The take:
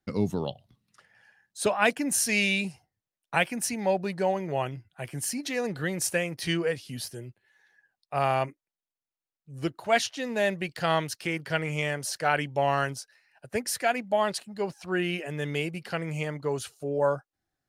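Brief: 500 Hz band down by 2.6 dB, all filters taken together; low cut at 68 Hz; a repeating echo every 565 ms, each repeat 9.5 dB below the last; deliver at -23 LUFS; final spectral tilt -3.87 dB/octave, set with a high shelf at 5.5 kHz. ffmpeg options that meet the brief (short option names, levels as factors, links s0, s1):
-af "highpass=68,equalizer=f=500:t=o:g=-3.5,highshelf=f=5500:g=6.5,aecho=1:1:565|1130|1695|2260:0.335|0.111|0.0365|0.012,volume=1.88"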